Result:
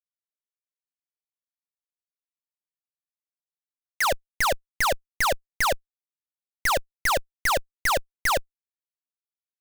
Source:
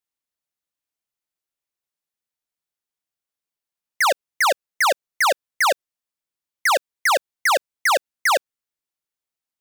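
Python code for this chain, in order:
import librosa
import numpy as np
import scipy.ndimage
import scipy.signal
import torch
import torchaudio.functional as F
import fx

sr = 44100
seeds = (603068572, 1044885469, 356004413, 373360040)

y = fx.schmitt(x, sr, flips_db=-43.5)
y = y * 10.0 ** (4.0 / 20.0)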